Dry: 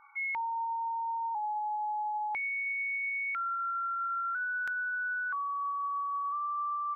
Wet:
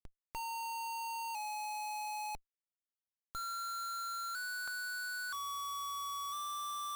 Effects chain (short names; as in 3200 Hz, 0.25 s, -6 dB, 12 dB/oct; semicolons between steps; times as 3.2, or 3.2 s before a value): LPF 1100 Hz 24 dB/oct; compressor 3:1, threshold -37 dBFS, peak gain reduction 4 dB; Schmitt trigger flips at -52 dBFS